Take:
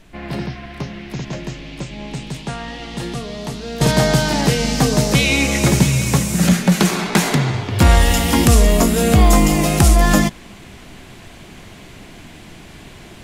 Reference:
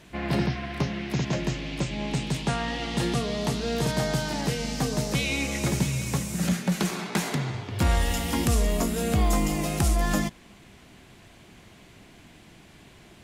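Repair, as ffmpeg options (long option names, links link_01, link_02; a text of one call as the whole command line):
ffmpeg -i in.wav -af "agate=range=-21dB:threshold=-31dB,asetnsamples=nb_out_samples=441:pad=0,asendcmd='3.81 volume volume -11.5dB',volume=0dB" out.wav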